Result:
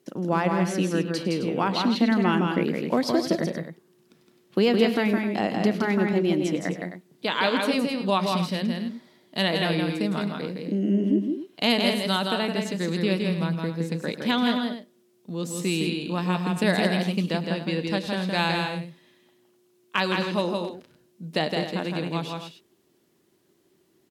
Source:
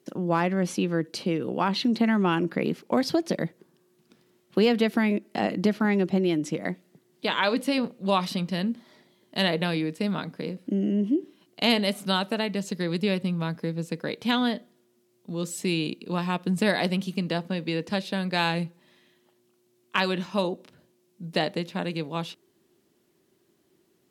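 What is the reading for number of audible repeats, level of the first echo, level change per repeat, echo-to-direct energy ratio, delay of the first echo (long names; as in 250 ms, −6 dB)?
4, −17.0 dB, repeats not evenly spaced, −3.0 dB, 103 ms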